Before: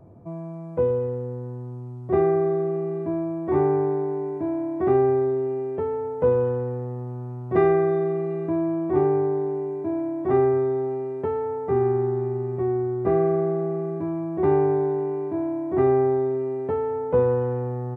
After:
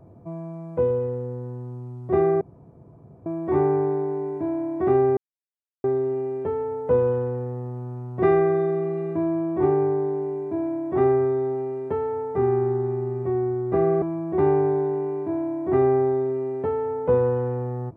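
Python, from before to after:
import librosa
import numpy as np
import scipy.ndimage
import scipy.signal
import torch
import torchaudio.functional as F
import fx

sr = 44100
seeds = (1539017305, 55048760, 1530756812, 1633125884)

y = fx.edit(x, sr, fx.room_tone_fill(start_s=2.41, length_s=0.85),
    fx.insert_silence(at_s=5.17, length_s=0.67),
    fx.cut(start_s=13.35, length_s=0.72), tone=tone)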